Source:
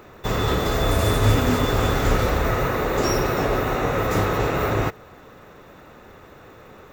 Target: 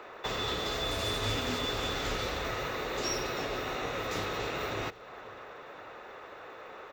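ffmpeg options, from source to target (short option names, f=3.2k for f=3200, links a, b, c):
-filter_complex "[0:a]acrossover=split=390 5100:gain=0.1 1 0.141[a][b][c];[a][b][c]amix=inputs=3:normalize=0,acrossover=split=260|3000[d][e][f];[e]acompressor=threshold=-37dB:ratio=10[g];[d][g][f]amix=inputs=3:normalize=0,asplit=2[h][i];[i]adelay=531,lowpass=f=3.6k:p=1,volume=-20.5dB,asplit=2[j][k];[k]adelay=531,lowpass=f=3.6k:p=1,volume=0.52,asplit=2[l][m];[m]adelay=531,lowpass=f=3.6k:p=1,volume=0.52,asplit=2[n][o];[o]adelay=531,lowpass=f=3.6k:p=1,volume=0.52[p];[j][l][n][p]amix=inputs=4:normalize=0[q];[h][q]amix=inputs=2:normalize=0,volume=1.5dB"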